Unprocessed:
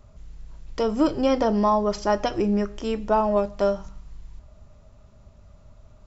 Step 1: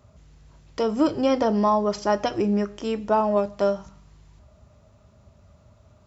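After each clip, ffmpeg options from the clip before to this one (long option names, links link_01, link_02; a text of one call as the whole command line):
ffmpeg -i in.wav -af "highpass=frequency=64:width=0.5412,highpass=frequency=64:width=1.3066" out.wav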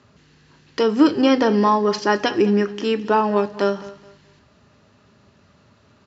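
ffmpeg -i in.wav -af "highpass=160,equalizer=frequency=280:width_type=q:width=4:gain=4,equalizer=frequency=410:width_type=q:width=4:gain=4,equalizer=frequency=630:width_type=q:width=4:gain=-9,equalizer=frequency=1700:width_type=q:width=4:gain=9,equalizer=frequency=2800:width_type=q:width=4:gain=6,equalizer=frequency=4300:width_type=q:width=4:gain=6,lowpass=frequency=6700:width=0.5412,lowpass=frequency=6700:width=1.3066,aecho=1:1:212|424|636:0.133|0.0373|0.0105,volume=4.5dB" out.wav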